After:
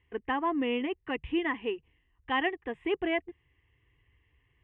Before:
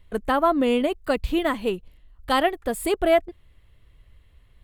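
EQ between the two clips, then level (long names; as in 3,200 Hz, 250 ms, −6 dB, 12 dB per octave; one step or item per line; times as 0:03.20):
loudspeaker in its box 140–3,300 Hz, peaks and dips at 150 Hz +9 dB, 1,300 Hz +9 dB, 1,900 Hz +7 dB, 2,900 Hz +8 dB
low-shelf EQ 200 Hz +11.5 dB
phaser with its sweep stopped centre 900 Hz, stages 8
−8.5 dB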